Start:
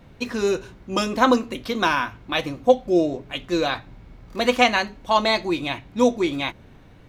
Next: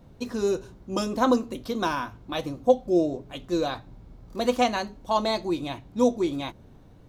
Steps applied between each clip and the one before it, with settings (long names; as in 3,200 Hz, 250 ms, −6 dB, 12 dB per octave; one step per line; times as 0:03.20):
parametric band 2,200 Hz −11 dB 1.5 octaves
level −2.5 dB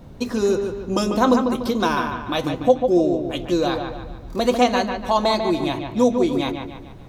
in parallel at +2.5 dB: downward compressor, threshold −32 dBFS, peak gain reduction 18 dB
on the sum: delay with a low-pass on its return 146 ms, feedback 44%, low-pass 3,200 Hz, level −6 dB
level +2 dB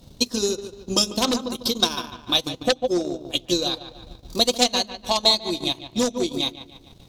harmonic generator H 5 −6 dB, 7 −13 dB, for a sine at −4 dBFS
high shelf with overshoot 2,700 Hz +13 dB, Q 1.5
transient designer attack +7 dB, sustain −12 dB
level −13 dB